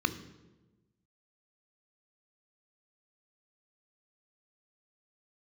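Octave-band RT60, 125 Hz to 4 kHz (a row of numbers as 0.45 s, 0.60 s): 1.5 s, 1.4 s, 1.3 s, 0.95 s, 0.85 s, 0.80 s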